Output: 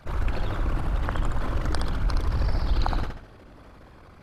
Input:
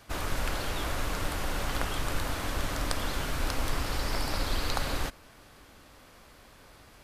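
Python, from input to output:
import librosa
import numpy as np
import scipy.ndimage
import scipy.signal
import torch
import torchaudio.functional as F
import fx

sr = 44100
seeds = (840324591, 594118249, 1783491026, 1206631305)

y = fx.envelope_sharpen(x, sr, power=2.0)
y = fx.stretch_grains(y, sr, factor=0.6, grain_ms=25.0)
y = fx.echo_feedback(y, sr, ms=68, feedback_pct=39, wet_db=-4.5)
y = y * librosa.db_to_amplitude(6.0)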